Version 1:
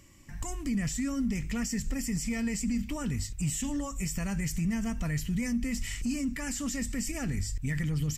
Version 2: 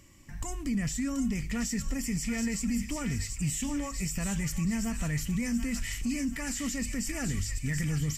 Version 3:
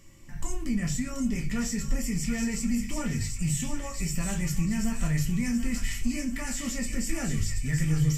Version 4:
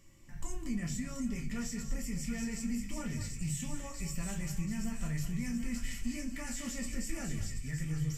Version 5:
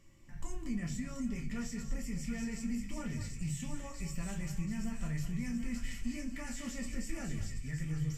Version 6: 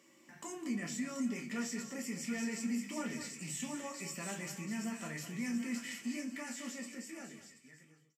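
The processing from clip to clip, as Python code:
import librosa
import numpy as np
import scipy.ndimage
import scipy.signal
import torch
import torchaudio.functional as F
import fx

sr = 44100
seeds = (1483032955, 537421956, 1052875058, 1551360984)

y1 = fx.echo_wet_highpass(x, sr, ms=731, feedback_pct=49, hz=1400.0, wet_db=-4.5)
y2 = fx.room_shoebox(y1, sr, seeds[0], volume_m3=120.0, walls='furnished', distance_m=1.2)
y2 = y2 * 10.0 ** (-1.0 / 20.0)
y3 = y2 + 10.0 ** (-11.0 / 20.0) * np.pad(y2, (int(206 * sr / 1000.0), 0))[:len(y2)]
y3 = fx.rider(y3, sr, range_db=10, speed_s=2.0)
y3 = y3 * 10.0 ** (-8.5 / 20.0)
y4 = fx.high_shelf(y3, sr, hz=6000.0, db=-7.0)
y4 = y4 * 10.0 ** (-1.0 / 20.0)
y5 = fx.fade_out_tail(y4, sr, length_s=2.53)
y5 = scipy.signal.sosfilt(scipy.signal.butter(4, 240.0, 'highpass', fs=sr, output='sos'), y5)
y5 = y5 * 10.0 ** (4.5 / 20.0)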